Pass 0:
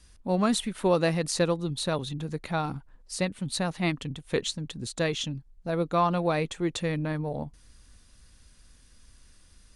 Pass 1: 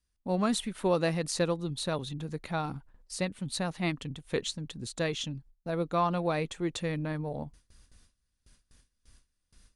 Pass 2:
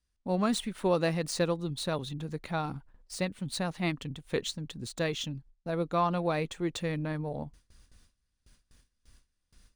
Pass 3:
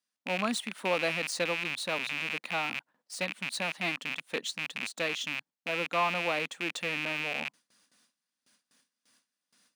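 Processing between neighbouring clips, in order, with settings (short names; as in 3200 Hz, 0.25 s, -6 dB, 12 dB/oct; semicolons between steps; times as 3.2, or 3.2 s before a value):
gate with hold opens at -44 dBFS; gain -3.5 dB
median filter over 3 samples
rattling part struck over -43 dBFS, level -21 dBFS; HPF 230 Hz 24 dB/oct; bell 380 Hz -9.5 dB 0.59 oct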